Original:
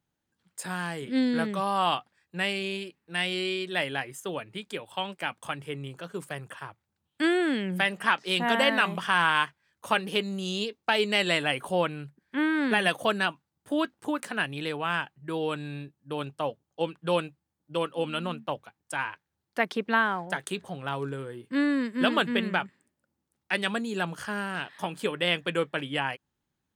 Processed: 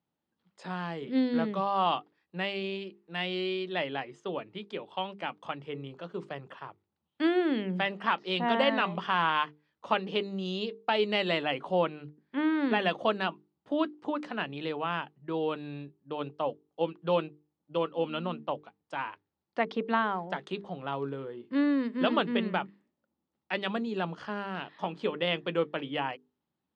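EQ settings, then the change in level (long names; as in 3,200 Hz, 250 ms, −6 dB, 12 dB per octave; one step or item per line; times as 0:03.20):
loudspeaker in its box 110–5,100 Hz, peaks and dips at 120 Hz −8 dB, 1,600 Hz −7 dB, 2,300 Hz −3 dB
high-shelf EQ 3,300 Hz −9 dB
mains-hum notches 50/100/150/200/250/300/350/400/450 Hz
0.0 dB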